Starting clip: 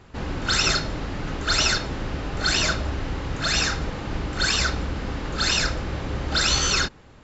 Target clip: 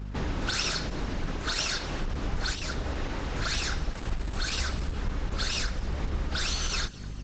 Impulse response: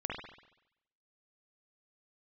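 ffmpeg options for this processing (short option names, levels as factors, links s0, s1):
-filter_complex "[0:a]asubboost=boost=3.5:cutoff=66,aeval=exprs='val(0)+0.0178*(sin(2*PI*50*n/s)+sin(2*PI*2*50*n/s)/2+sin(2*PI*3*50*n/s)/3+sin(2*PI*4*50*n/s)/4+sin(2*PI*5*50*n/s)/5)':c=same,asettb=1/sr,asplit=3[s0][s1][s2];[s0]atrim=end=1.394[s3];[s1]atrim=start=1.39:end=2.01,asetpts=PTS-STARTPTS,afade=t=in:d=0.004:c=qsin,afade=t=out:st=0.616:d=0.004:c=qsin,lowshelf=f=210:g=-6[s4];[s2]atrim=start=2.006[s5];[s3][s4]acrossfade=d=0.004:c1=hsin:c2=qsin[s6];[s6][s5]acrossfade=d=0.004:c1=qsin:c2=hsin,asettb=1/sr,asplit=3[s7][s8][s9];[s7]atrim=end=2.534[s10];[s8]atrim=start=2.53:end=3.37,asetpts=PTS-STARTPTS,afade=t=in:d=0.004:c=qsin,afade=t=out:st=0.836:d=0.004:c=qsin,acrossover=split=130|390[s11][s12][s13];[s11]acompressor=threshold=0.0316:ratio=4[s14];[s12]acompressor=threshold=0.0158:ratio=4[s15];[s13]acompressor=threshold=0.0282:ratio=4[s16];[s14][s15][s16]amix=inputs=3:normalize=0[s17];[s9]atrim=start=3.366[s18];[s10][s17]acrossfade=d=0.004:c1=hsin:c2=qsin[s19];[s19][s18]acrossfade=d=0.004:c1=qsin:c2=hsin,aresample=16000,aresample=44100,acompressor=threshold=0.0501:ratio=6,asplit=2[s20][s21];[s21]asplit=4[s22][s23][s24][s25];[s22]adelay=228,afreqshift=73,volume=0.0944[s26];[s23]adelay=456,afreqshift=146,volume=0.0537[s27];[s24]adelay=684,afreqshift=219,volume=0.0305[s28];[s25]adelay=912,afreqshift=292,volume=0.0176[s29];[s26][s27][s28][s29]amix=inputs=4:normalize=0[s30];[s20][s30]amix=inputs=2:normalize=0,asettb=1/sr,asplit=3[s31][s32][s33];[s31]atrim=end=3.924[s34];[s32]atrim=start=3.92:end=4.93,asetpts=PTS-STARTPTS,afade=t=in:d=0.004:c=qsin,afade=t=out:st=1.006:d=0.004:c=qsin,acrusher=bits=8:dc=4:mix=0:aa=0.000001[s35];[s33]atrim=start=4.926[s36];[s34][s35]acrossfade=d=0.004:c1=hsin:c2=qsin[s37];[s37][s36]acrossfade=d=0.004:c1=qsin:c2=hsin" -ar 48000 -c:a libopus -b:a 10k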